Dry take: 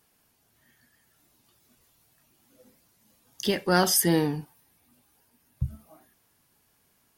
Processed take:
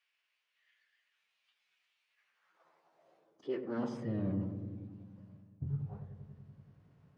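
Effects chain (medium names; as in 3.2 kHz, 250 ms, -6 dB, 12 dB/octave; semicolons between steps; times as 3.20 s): partial rectifier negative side -7 dB; treble shelf 2.2 kHz -6.5 dB; de-hum 143.5 Hz, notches 16; reverse; compression 12:1, threshold -39 dBFS, peak gain reduction 19.5 dB; reverse; tape spacing loss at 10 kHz 28 dB; on a send: filtered feedback delay 95 ms, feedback 81%, low-pass 840 Hz, level -6.5 dB; on the sum: formant-preserving pitch shift -7.5 st; high-pass sweep 2.5 kHz -> 130 Hz, 2.07–4.19 s; trim +4 dB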